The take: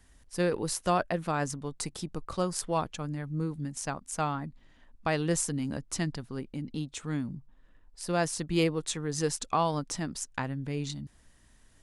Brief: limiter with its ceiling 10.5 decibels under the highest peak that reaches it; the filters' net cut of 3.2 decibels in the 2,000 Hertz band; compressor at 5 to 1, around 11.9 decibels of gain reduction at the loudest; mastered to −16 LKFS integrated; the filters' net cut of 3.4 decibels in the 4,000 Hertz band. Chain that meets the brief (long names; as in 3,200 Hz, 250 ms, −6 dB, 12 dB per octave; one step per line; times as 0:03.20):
parametric band 2,000 Hz −3.5 dB
parametric band 4,000 Hz −3.5 dB
downward compressor 5 to 1, threshold −36 dBFS
level +26.5 dB
brickwall limiter −4.5 dBFS